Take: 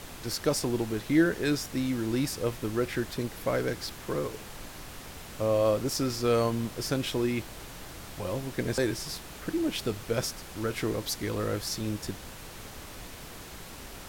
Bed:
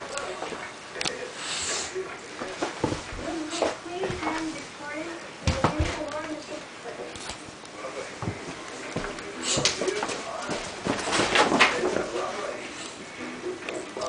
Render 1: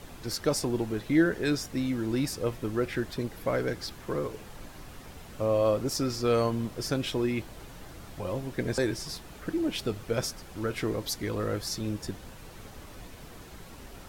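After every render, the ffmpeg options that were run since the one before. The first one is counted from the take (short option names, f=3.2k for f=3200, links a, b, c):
-af "afftdn=nr=7:nf=-45"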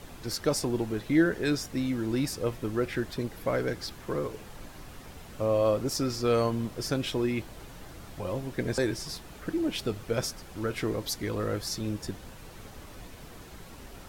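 -af anull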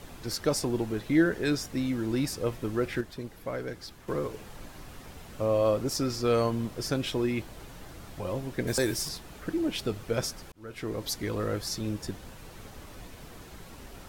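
-filter_complex "[0:a]asettb=1/sr,asplit=3[a][b][c];[a]atrim=end=8.674[d];[b]atrim=start=8.67:end=9.09,asetpts=PTS-STARTPTS,afade=t=in:d=0.004:c=qsin,afade=t=out:st=0.416:d=0.004:c=qsin,aemphasis=mode=production:type=50kf[e];[c]atrim=start=9.086[f];[d][e]acrossfade=d=0.004:c1=hsin:c2=qsin[g];[g][f]acrossfade=d=0.004:c1=qsin:c2=hsin,asplit=4[h][i][j][k];[h]atrim=end=3.012[l];[i]atrim=start=3.008:end=4.082,asetpts=PTS-STARTPTS,volume=-6dB[m];[j]atrim=start=4.078:end=10.52,asetpts=PTS-STARTPTS,afade=t=out:st=6.438:d=0.004:c=hsin[n];[k]atrim=start=10.52,asetpts=PTS-STARTPTS,afade=t=in:d=0.57[o];[l][m]acrossfade=d=0.004:c1=hsin:c2=hsin[p];[n][o]concat=n=2:v=0:a=1[q];[p][q]acrossfade=d=0.004:c1=hsin:c2=hsin"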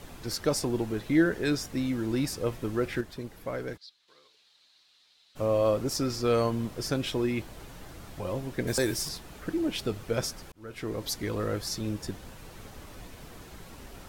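-filter_complex "[0:a]asplit=3[a][b][c];[a]afade=t=out:st=3.76:d=0.02[d];[b]bandpass=f=4k:t=q:w=4.9,afade=t=in:st=3.76:d=0.02,afade=t=out:st=5.35:d=0.02[e];[c]afade=t=in:st=5.35:d=0.02[f];[d][e][f]amix=inputs=3:normalize=0"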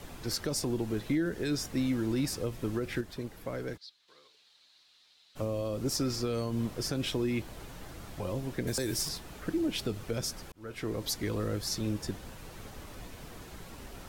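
-filter_complex "[0:a]alimiter=limit=-20.5dB:level=0:latency=1:release=108,acrossover=split=370|3000[a][b][c];[b]acompressor=threshold=-37dB:ratio=6[d];[a][d][c]amix=inputs=3:normalize=0"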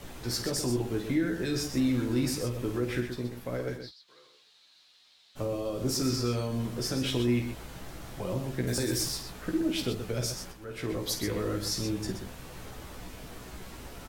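-filter_complex "[0:a]asplit=2[a][b];[b]adelay=16,volume=-5dB[c];[a][c]amix=inputs=2:normalize=0,aecho=1:1:49.56|125.4:0.355|0.398"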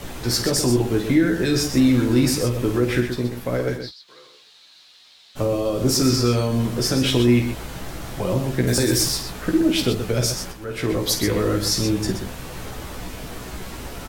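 -af "volume=10.5dB"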